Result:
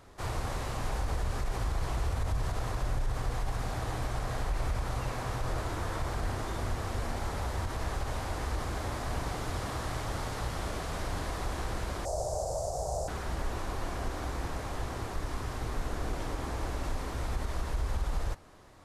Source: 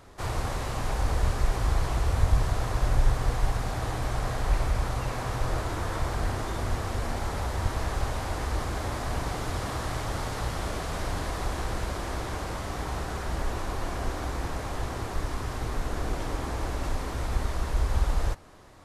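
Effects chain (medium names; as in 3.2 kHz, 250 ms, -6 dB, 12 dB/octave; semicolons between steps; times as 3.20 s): 12.05–13.08 s: FFT filter 150 Hz 0 dB, 250 Hz -19 dB, 630 Hz +15 dB, 1.1 kHz -11 dB, 2 kHz -24 dB, 3.3 kHz -19 dB, 5 kHz +3 dB, 7.4 kHz +11 dB, 13 kHz -1 dB; peak limiter -19.5 dBFS, peak gain reduction 10 dB; trim -3.5 dB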